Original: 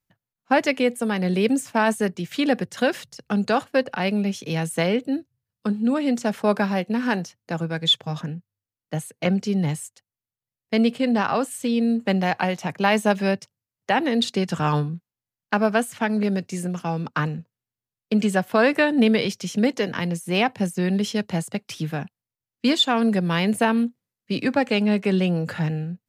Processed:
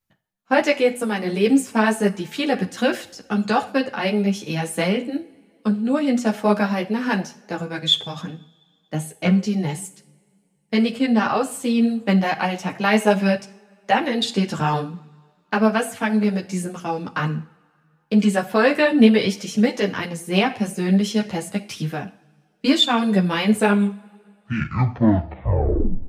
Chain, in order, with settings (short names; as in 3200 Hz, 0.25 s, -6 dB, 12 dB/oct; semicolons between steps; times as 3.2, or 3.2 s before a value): tape stop at the end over 2.60 s; two-slope reverb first 0.49 s, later 2.4 s, from -22 dB, DRR 10 dB; ensemble effect; gain +4.5 dB